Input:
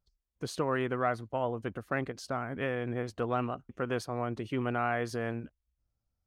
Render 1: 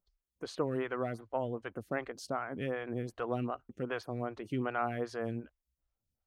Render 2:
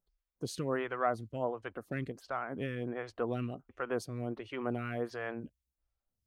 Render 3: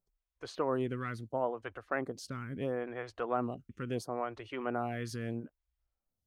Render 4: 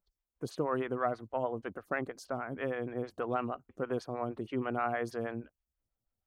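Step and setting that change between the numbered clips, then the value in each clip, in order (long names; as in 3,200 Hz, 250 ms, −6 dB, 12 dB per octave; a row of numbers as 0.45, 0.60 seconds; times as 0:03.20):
phaser with staggered stages, speed: 2.6, 1.4, 0.74, 6.3 Hertz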